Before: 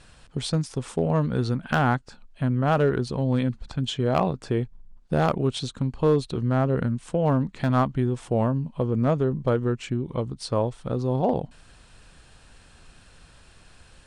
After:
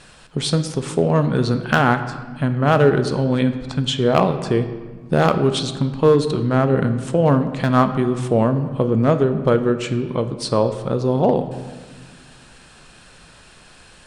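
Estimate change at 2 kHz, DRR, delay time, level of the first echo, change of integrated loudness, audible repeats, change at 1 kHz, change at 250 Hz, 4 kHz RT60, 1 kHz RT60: +8.0 dB, 8.5 dB, none, none, +6.5 dB, none, +6.5 dB, +6.5 dB, 1.0 s, 1.5 s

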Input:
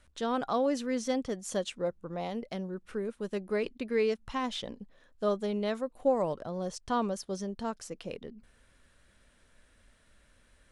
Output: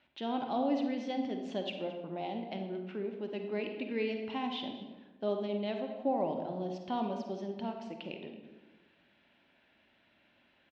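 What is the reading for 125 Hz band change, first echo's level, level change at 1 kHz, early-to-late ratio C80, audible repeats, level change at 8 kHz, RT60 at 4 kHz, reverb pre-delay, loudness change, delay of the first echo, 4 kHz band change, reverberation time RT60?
-3.5 dB, -18.0 dB, -2.0 dB, 7.0 dB, 1, under -20 dB, 0.70 s, 38 ms, -3.0 dB, 0.224 s, -2.0 dB, 1.2 s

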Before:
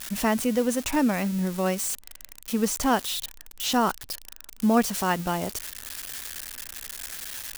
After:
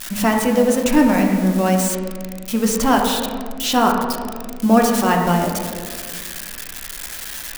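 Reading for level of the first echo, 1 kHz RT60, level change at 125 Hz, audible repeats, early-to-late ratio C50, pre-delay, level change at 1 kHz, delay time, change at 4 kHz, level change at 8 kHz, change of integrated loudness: none, 1.6 s, +9.5 dB, none, 3.5 dB, 3 ms, +9.0 dB, none, +6.0 dB, +5.5 dB, +8.5 dB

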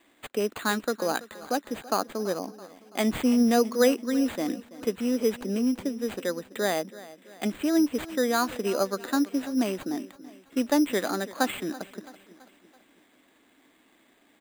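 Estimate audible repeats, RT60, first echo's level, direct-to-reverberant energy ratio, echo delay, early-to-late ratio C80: 3, none, -18.0 dB, none, 0.332 s, none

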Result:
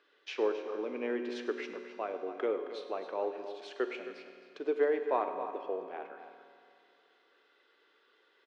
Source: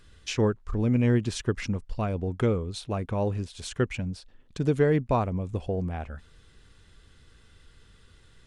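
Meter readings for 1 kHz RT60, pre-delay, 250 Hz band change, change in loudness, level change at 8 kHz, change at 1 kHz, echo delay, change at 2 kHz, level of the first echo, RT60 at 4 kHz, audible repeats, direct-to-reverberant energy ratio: 2.4 s, 5 ms, -13.0 dB, -7.5 dB, under -20 dB, -3.0 dB, 0.103 s, -5.0 dB, -15.5 dB, 2.4 s, 2, 5.0 dB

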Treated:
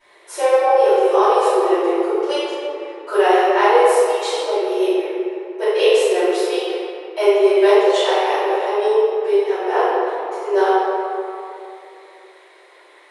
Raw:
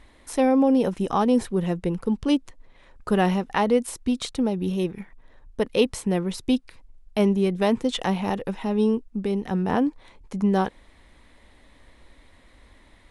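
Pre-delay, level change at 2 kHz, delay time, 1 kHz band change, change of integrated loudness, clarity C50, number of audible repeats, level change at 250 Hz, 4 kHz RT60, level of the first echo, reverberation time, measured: 3 ms, +10.0 dB, none, +11.5 dB, +7.0 dB, -5.5 dB, none, -3.0 dB, 1.4 s, none, 2.8 s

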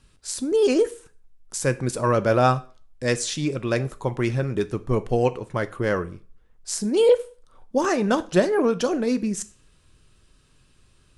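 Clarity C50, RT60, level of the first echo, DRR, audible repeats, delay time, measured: 19.0 dB, 0.40 s, none, 11.5 dB, none, none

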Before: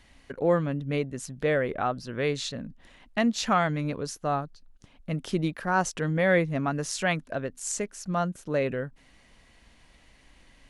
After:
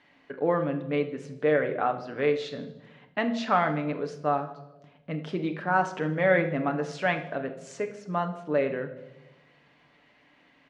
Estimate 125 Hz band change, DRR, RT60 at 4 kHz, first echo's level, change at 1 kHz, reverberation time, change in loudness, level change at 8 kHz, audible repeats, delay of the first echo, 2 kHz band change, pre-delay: -4.0 dB, 5.0 dB, 0.75 s, -17.5 dB, +1.5 dB, 1.0 s, 0.0 dB, under -15 dB, 4, 77 ms, +0.5 dB, 7 ms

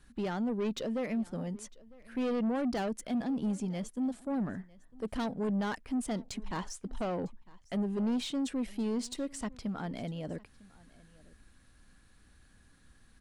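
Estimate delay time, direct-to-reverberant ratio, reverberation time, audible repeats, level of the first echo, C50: 0.953 s, none, none, 1, -23.0 dB, none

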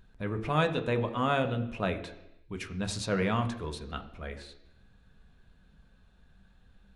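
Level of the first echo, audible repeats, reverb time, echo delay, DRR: none, none, 0.85 s, none, 5.5 dB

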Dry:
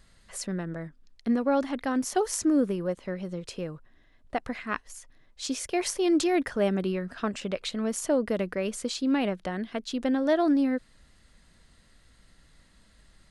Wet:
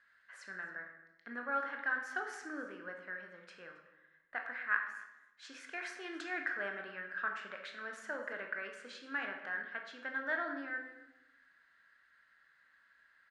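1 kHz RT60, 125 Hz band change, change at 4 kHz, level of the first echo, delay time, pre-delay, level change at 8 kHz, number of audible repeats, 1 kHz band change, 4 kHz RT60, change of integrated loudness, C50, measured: 0.90 s, under -25 dB, -15.5 dB, -21.0 dB, 0.271 s, 17 ms, -24.0 dB, 1, -8.5 dB, 0.75 s, -11.5 dB, 5.5 dB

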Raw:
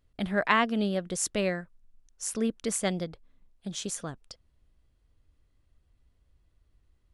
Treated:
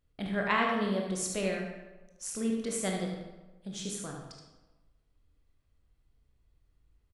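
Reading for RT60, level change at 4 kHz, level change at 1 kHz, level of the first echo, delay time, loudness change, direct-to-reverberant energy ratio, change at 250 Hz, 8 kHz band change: 1.2 s, -3.5 dB, -2.5 dB, -6.0 dB, 75 ms, -3.0 dB, -0.5 dB, -2.0 dB, -3.5 dB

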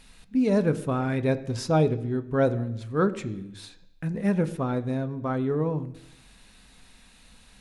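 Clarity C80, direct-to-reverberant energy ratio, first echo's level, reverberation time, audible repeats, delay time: 17.5 dB, 10.0 dB, none, 0.85 s, none, none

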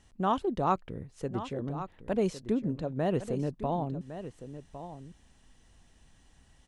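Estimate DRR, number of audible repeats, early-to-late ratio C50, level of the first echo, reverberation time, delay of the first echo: none, 1, none, -12.0 dB, none, 1.108 s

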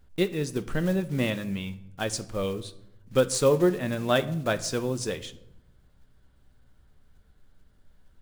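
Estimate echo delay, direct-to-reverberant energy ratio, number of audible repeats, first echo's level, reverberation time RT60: none, 9.5 dB, none, none, 0.80 s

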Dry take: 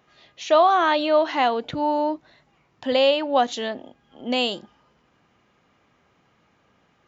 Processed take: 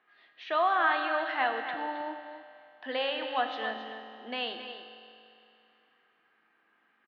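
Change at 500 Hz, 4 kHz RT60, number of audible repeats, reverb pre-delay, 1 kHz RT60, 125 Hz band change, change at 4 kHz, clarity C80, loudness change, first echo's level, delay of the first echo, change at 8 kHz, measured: -13.5 dB, 2.6 s, 1, 4 ms, 2.7 s, n/a, -9.5 dB, 5.5 dB, -9.5 dB, -10.5 dB, 0.268 s, n/a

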